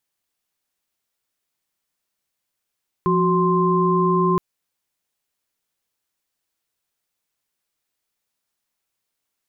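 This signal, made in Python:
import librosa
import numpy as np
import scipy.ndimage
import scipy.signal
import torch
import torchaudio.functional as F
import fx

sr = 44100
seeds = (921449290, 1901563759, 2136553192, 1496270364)

y = fx.chord(sr, length_s=1.32, notes=(53, 66, 84), wave='sine', level_db=-19.5)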